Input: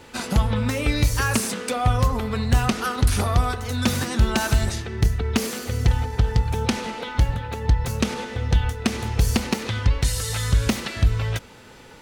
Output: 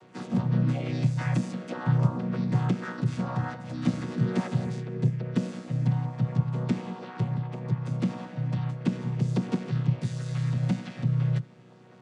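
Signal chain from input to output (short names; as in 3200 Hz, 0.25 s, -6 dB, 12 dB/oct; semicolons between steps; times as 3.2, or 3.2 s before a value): chord vocoder bare fifth, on B2; harmoniser +4 st -4 dB; gain -3 dB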